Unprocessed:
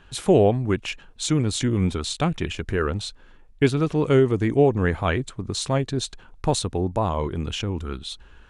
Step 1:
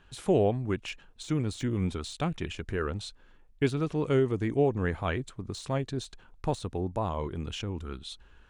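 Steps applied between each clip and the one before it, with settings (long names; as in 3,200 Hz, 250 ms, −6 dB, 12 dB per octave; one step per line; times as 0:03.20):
de-essing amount 65%
level −7.5 dB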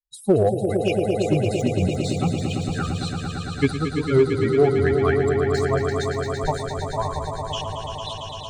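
spectral dynamics exaggerated over time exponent 3
echo that builds up and dies away 113 ms, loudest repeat 5, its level −8 dB
in parallel at −6.5 dB: gain into a clipping stage and back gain 25.5 dB
on the sum: level +8.5 dB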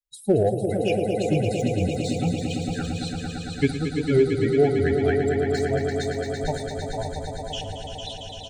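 Butterworth band-reject 1,100 Hz, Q 1.6
single-tap delay 456 ms −9 dB
convolution reverb, pre-delay 7 ms, DRR 16 dB
level −2 dB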